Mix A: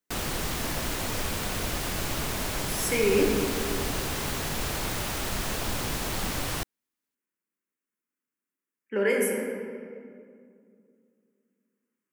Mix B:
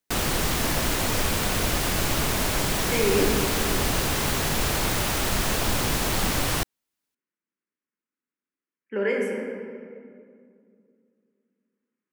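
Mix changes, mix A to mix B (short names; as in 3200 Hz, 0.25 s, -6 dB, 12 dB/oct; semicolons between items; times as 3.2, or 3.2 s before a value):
speech: add air absorption 110 m; background +6.0 dB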